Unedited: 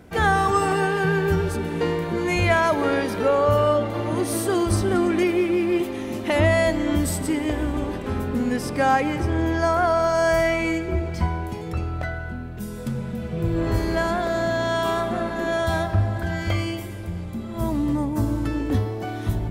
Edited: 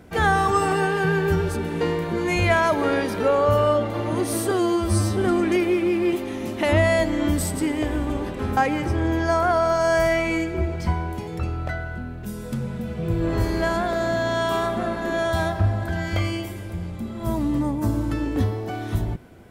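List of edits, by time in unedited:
0:04.51–0:04.84: time-stretch 2×
0:08.24–0:08.91: remove

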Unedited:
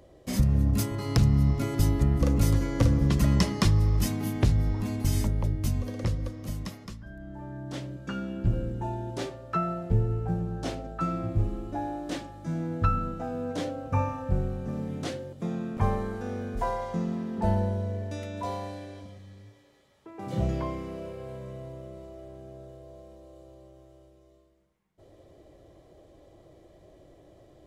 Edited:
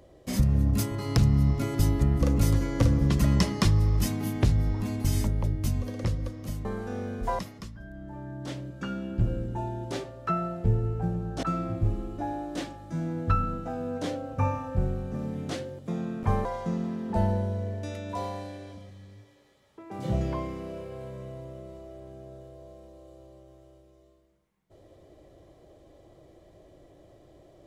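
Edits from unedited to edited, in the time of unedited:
0:10.69–0:10.97: remove
0:15.99–0:16.73: move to 0:06.65

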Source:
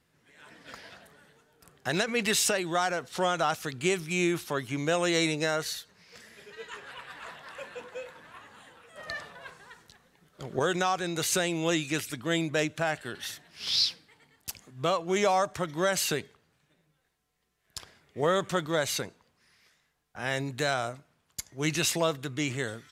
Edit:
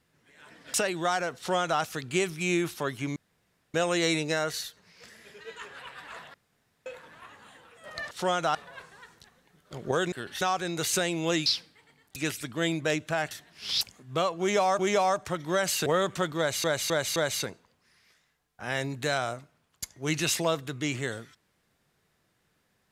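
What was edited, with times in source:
0:00.74–0:02.44: remove
0:03.07–0:03.51: duplicate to 0:09.23
0:04.86: splice in room tone 0.58 s
0:07.46–0:07.98: fill with room tone
0:13.00–0:13.29: move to 0:10.80
0:13.79–0:14.49: move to 0:11.85
0:15.08–0:15.47: repeat, 2 plays
0:16.15–0:18.20: remove
0:18.72–0:18.98: repeat, 4 plays

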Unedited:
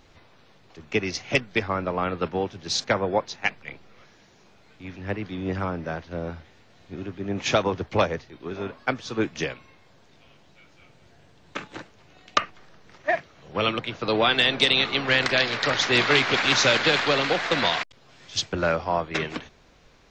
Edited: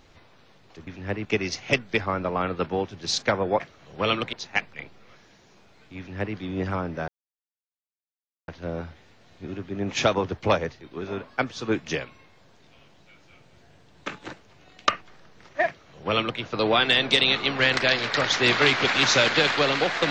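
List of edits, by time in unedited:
0:04.87–0:05.25: duplicate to 0:00.87
0:05.97: splice in silence 1.40 s
0:13.16–0:13.89: duplicate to 0:03.22

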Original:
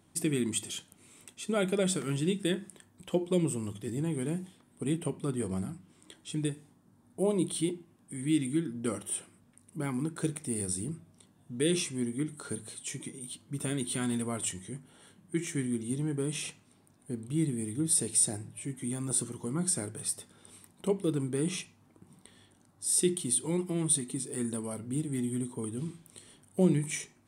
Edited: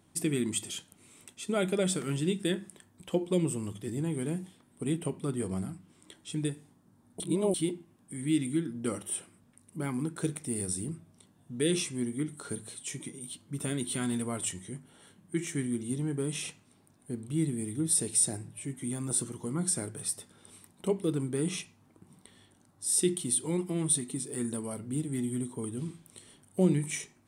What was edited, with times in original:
0:07.20–0:07.54: reverse

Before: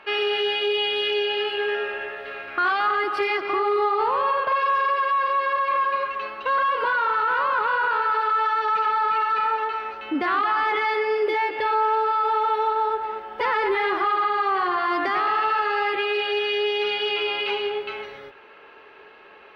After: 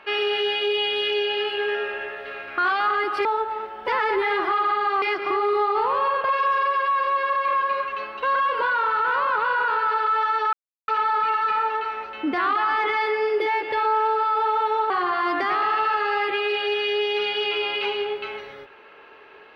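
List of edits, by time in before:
0:08.76: splice in silence 0.35 s
0:12.78–0:14.55: move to 0:03.25

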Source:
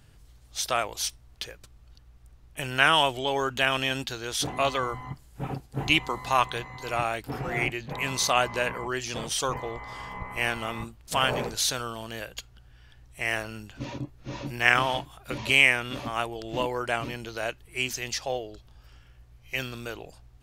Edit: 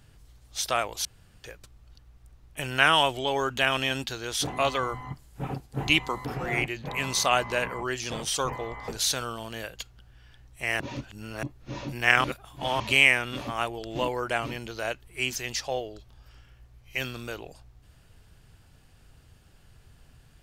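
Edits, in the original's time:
0:01.05–0:01.44: fill with room tone
0:06.25–0:07.29: remove
0:09.92–0:11.46: remove
0:13.38–0:14.01: reverse
0:14.82–0:15.38: reverse

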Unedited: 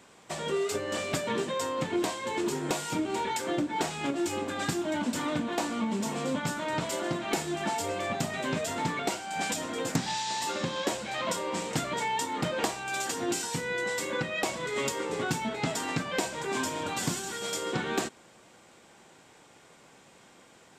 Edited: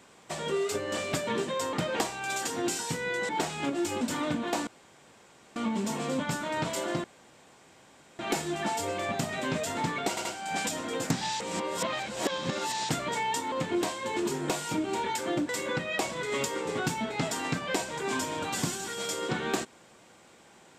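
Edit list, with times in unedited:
0:01.73–0:03.70: swap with 0:12.37–0:13.93
0:04.42–0:05.06: remove
0:05.72: splice in room tone 0.89 s
0:07.20: splice in room tone 1.15 s
0:09.10: stutter 0.08 s, 3 plays
0:10.25–0:11.74: reverse

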